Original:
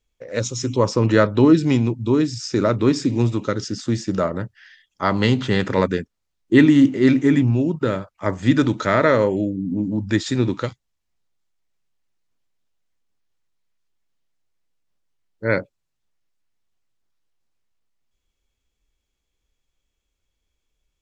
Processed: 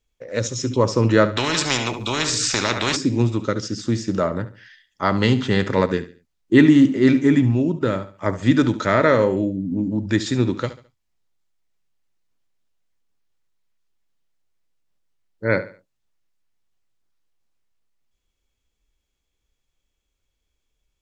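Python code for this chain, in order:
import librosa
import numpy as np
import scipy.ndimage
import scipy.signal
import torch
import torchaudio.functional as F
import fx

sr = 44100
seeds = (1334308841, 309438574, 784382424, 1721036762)

y = fx.echo_feedback(x, sr, ms=71, feedback_pct=33, wet_db=-14.5)
y = fx.spectral_comp(y, sr, ratio=4.0, at=(1.36, 2.95), fade=0.02)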